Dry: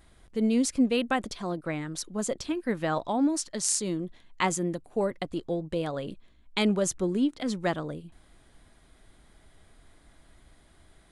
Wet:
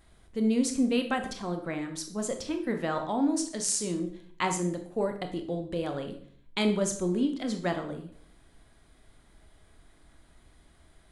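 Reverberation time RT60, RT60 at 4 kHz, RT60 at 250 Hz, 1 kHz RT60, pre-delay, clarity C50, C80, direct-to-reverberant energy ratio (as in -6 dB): 0.60 s, 0.45 s, 0.65 s, 0.50 s, 20 ms, 9.5 dB, 13.0 dB, 5.5 dB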